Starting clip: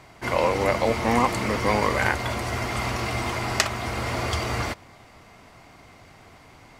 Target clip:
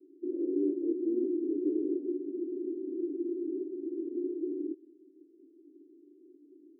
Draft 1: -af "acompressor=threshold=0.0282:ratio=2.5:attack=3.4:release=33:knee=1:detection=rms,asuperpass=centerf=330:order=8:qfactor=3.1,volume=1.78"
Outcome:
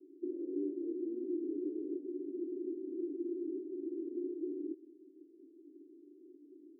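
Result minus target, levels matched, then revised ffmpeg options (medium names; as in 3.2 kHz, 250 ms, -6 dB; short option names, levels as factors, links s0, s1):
compression: peak gain reduction +13 dB
-af "asuperpass=centerf=330:order=8:qfactor=3.1,volume=1.78"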